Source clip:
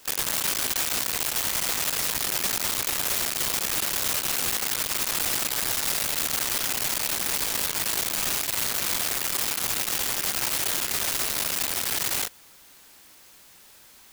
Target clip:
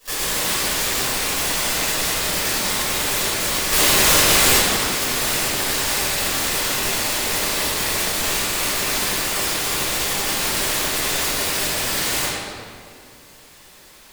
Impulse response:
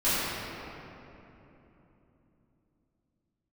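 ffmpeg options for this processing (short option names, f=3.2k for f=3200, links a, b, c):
-filter_complex "[0:a]asettb=1/sr,asplit=3[a][b][c];[a]atrim=end=3.704[d];[b]atrim=start=3.7:end=4.58,asetpts=PTS-STARTPTS,afade=t=in:d=0.004:c=qsin,afade=t=out:st=0.876:d=0.004:c=qsin,acontrast=82[e];[c]atrim=start=4.576[f];[d][e]acrossfade=d=0.004:c1=hsin:c2=qsin[g];[g][f]acrossfade=d=0.004:c1=qsin:c2=hsin[h];[1:a]atrim=start_sample=2205,asetrate=79380,aresample=44100[i];[h][i]afir=irnorm=-1:irlink=0,volume=-2.5dB"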